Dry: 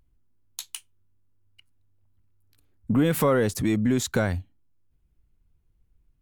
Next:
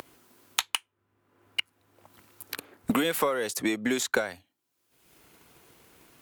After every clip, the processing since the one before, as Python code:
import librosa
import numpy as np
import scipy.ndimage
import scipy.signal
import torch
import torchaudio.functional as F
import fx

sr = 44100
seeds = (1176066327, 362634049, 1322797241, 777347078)

y = scipy.signal.sosfilt(scipy.signal.butter(2, 460.0, 'highpass', fs=sr, output='sos'), x)
y = fx.transient(y, sr, attack_db=10, sustain_db=-2)
y = fx.band_squash(y, sr, depth_pct=100)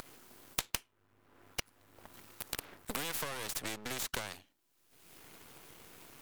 y = np.maximum(x, 0.0)
y = fx.spectral_comp(y, sr, ratio=2.0)
y = y * librosa.db_to_amplitude(-5.0)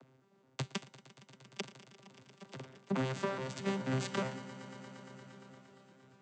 y = fx.vocoder_arp(x, sr, chord='bare fifth', root=48, every_ms=211)
y = fx.echo_swell(y, sr, ms=116, loudest=5, wet_db=-14)
y = fx.band_widen(y, sr, depth_pct=70)
y = y * librosa.db_to_amplitude(2.5)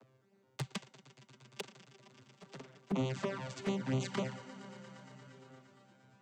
y = fx.env_flanger(x, sr, rest_ms=10.4, full_db=-30.0)
y = y * librosa.db_to_amplitude(1.0)